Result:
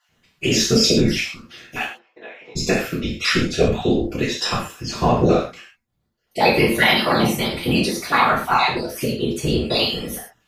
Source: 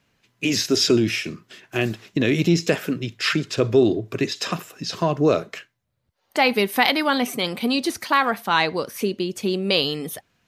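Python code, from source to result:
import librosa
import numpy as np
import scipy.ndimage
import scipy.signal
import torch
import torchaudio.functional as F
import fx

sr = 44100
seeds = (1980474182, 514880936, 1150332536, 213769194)

y = fx.spec_dropout(x, sr, seeds[0], share_pct=28)
y = fx.level_steps(y, sr, step_db=11, at=(5.31, 6.41))
y = fx.whisperise(y, sr, seeds[1])
y = fx.ladder_bandpass(y, sr, hz=1000.0, resonance_pct=40, at=(1.83, 2.55), fade=0.02)
y = fx.rev_gated(y, sr, seeds[2], gate_ms=160, shape='falling', drr_db=-5.5)
y = y * 10.0 ** (-2.0 / 20.0)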